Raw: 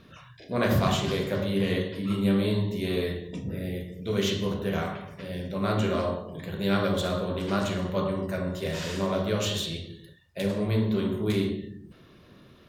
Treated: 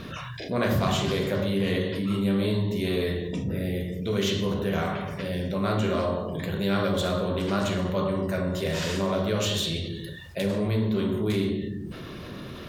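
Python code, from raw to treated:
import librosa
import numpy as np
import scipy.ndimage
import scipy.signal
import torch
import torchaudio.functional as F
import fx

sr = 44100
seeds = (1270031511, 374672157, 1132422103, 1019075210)

y = fx.env_flatten(x, sr, amount_pct=50)
y = y * 10.0 ** (-2.0 / 20.0)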